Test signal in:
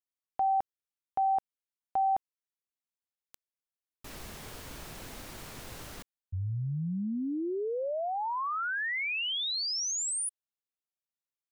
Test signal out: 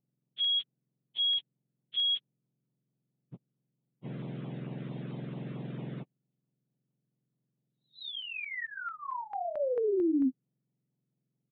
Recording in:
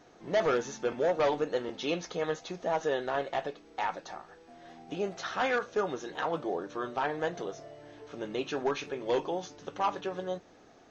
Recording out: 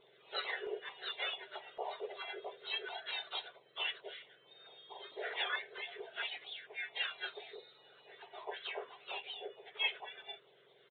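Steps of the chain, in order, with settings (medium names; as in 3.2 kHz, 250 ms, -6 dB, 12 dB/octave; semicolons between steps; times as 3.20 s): spectrum inverted on a logarithmic axis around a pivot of 1.6 kHz; resampled via 8 kHz; LFO notch saw down 4.5 Hz 700–1800 Hz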